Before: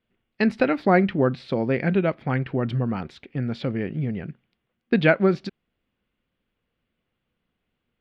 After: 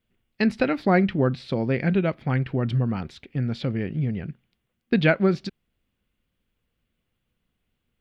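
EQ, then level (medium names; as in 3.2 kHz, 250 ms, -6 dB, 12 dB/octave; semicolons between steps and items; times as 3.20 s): bass shelf 150 Hz +10 dB; treble shelf 3.7 kHz +10 dB; -3.5 dB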